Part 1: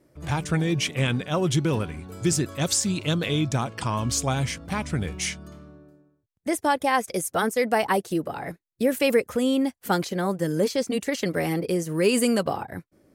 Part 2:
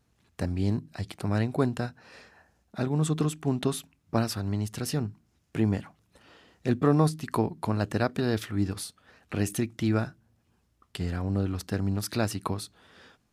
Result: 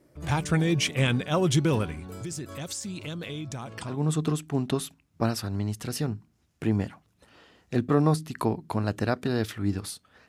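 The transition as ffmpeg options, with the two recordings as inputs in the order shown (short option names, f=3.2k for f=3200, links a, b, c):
-filter_complex "[0:a]asettb=1/sr,asplit=3[a][b][c];[a]atrim=end=1.934[d];[b]atrim=start=1.93:end=4,asetpts=PTS-STARTPTS,afade=t=in:d=0.004:c=qsin,afade=t=out:st=2.066:d=0.004:c=qsin,acompressor=threshold=-34dB:ratio=4:attack=3.2:release=140:knee=1:detection=peak[e];[c]atrim=start=3.996[f];[d][e]acrossfade=d=0.004:c1=hsin:c2=qsin[g];[g][f]acrossfade=d=0.004:c1=qsin:c2=hsin,apad=whole_dur=10.28,atrim=end=10.28,atrim=end=4,asetpts=PTS-STARTPTS[h];[1:a]atrim=start=2.75:end=9.21,asetpts=PTS-STARTPTS[i];[h][i]acrossfade=d=0.18:c1=tri:c2=tri"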